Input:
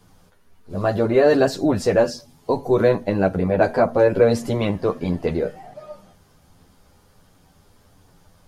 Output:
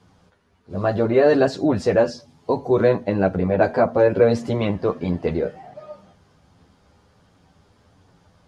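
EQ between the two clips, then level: HPF 50 Hz; air absorption 79 m; 0.0 dB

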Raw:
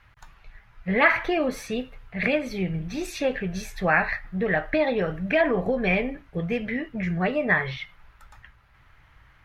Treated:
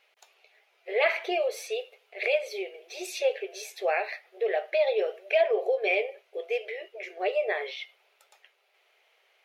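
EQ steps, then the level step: brick-wall FIR high-pass 360 Hz; band shelf 1300 Hz -13.5 dB 1.3 oct; 0.0 dB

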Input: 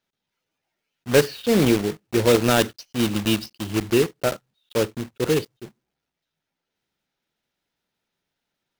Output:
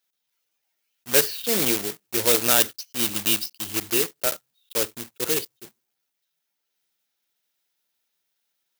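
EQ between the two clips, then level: RIAA curve recording; bell 89 Hz +7 dB 0.5 oct; -4.0 dB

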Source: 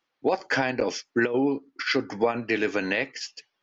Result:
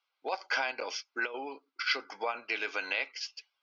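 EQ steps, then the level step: HPF 930 Hz 12 dB/oct; Butterworth band-stop 1800 Hz, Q 5.7; steep low-pass 5800 Hz 36 dB/oct; -2.0 dB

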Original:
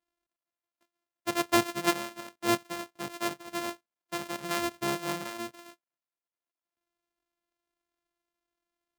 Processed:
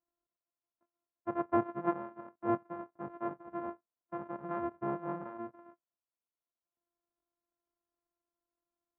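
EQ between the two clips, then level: LPF 1300 Hz 24 dB/oct; -3.5 dB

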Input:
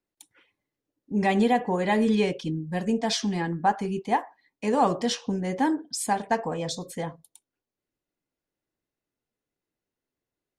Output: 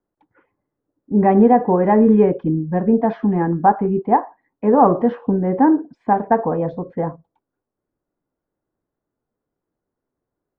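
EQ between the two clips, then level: LPF 1400 Hz 24 dB/oct; dynamic EQ 350 Hz, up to +3 dB, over -38 dBFS, Q 1.2; +8.5 dB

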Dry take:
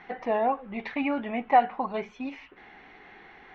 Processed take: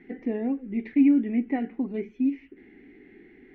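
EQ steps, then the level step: EQ curve 170 Hz 0 dB, 270 Hz +12 dB, 400 Hz +5 dB, 590 Hz -14 dB, 1100 Hz -25 dB, 2000 Hz -5 dB, 3700 Hz -16 dB; 0.0 dB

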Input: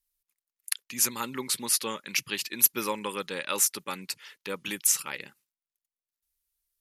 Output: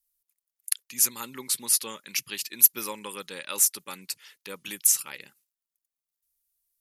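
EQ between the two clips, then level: high shelf 5000 Hz +11.5 dB; -6.0 dB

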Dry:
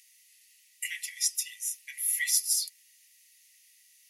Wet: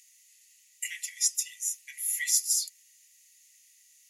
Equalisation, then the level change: bell 6900 Hz +10.5 dB 0.32 oct; -2.5 dB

